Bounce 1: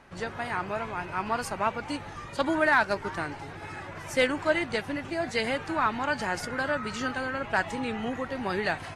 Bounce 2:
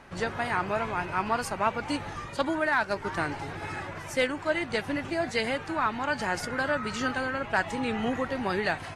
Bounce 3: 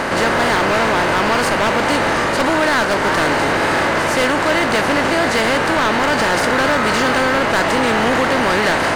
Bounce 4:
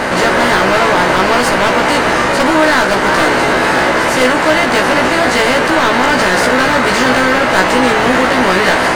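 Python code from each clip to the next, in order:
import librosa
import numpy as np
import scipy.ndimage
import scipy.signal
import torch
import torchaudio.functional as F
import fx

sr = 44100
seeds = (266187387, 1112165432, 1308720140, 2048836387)

y1 = fx.rider(x, sr, range_db=4, speed_s=0.5)
y2 = fx.bin_compress(y1, sr, power=0.4)
y2 = np.clip(y2, -10.0 ** (-20.0 / 20.0), 10.0 ** (-20.0 / 20.0))
y2 = y2 * librosa.db_to_amplitude(8.5)
y3 = fx.doubler(y2, sr, ms=16.0, db=-2)
y3 = y3 * librosa.db_to_amplitude(2.5)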